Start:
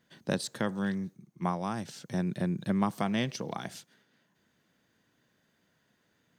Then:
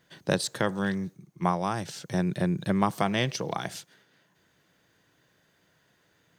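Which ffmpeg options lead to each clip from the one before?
ffmpeg -i in.wav -af "equalizer=frequency=230:width_type=o:width=0.37:gain=-10,volume=6dB" out.wav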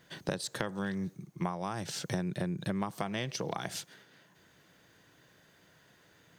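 ffmpeg -i in.wav -af "acompressor=threshold=-35dB:ratio=8,volume=4dB" out.wav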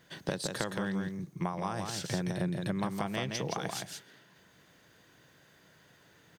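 ffmpeg -i in.wav -af "aecho=1:1:168:0.596" out.wav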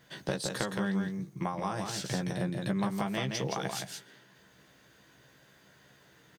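ffmpeg -i in.wav -filter_complex "[0:a]asplit=2[link_01][link_02];[link_02]adelay=15,volume=-5.5dB[link_03];[link_01][link_03]amix=inputs=2:normalize=0" out.wav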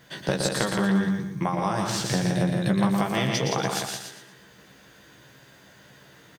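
ffmpeg -i in.wav -af "aecho=1:1:117|234|351|468:0.531|0.186|0.065|0.0228,volume=7dB" out.wav

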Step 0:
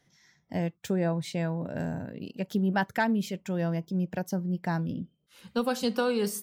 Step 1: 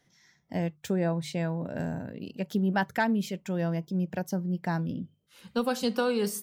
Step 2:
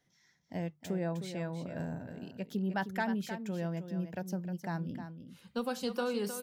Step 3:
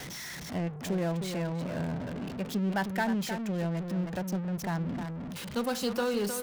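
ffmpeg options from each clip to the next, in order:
ffmpeg -i in.wav -af "bandreject=frequency=50:width_type=h:width=6,bandreject=frequency=100:width_type=h:width=6,bandreject=frequency=150:width_type=h:width=6" out.wav
ffmpeg -i in.wav -af "aecho=1:1:310:0.335,volume=-7dB" out.wav
ffmpeg -i in.wav -af "aeval=exprs='val(0)+0.5*0.0141*sgn(val(0))':channel_layout=same,anlmdn=0.0398,volume=2dB" out.wav

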